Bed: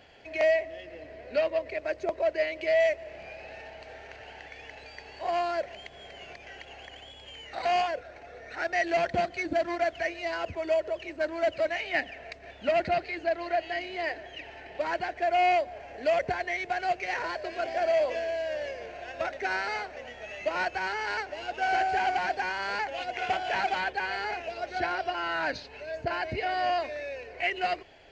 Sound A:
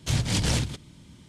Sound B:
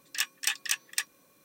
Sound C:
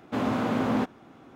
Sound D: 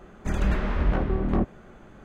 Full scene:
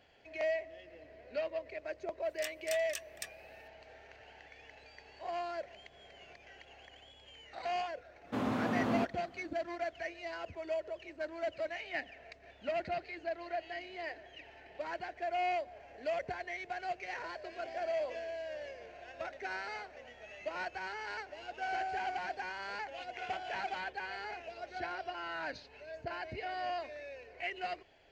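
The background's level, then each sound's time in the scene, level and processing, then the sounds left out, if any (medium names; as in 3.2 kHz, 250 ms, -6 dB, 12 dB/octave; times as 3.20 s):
bed -10 dB
2.24 s: add B -13.5 dB
8.20 s: add C -7 dB, fades 0.10 s
not used: A, D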